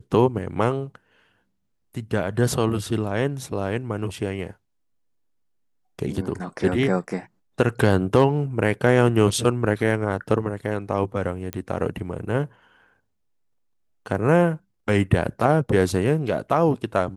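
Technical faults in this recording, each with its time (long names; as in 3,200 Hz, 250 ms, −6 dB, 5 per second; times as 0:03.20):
0:11.53: click −13 dBFS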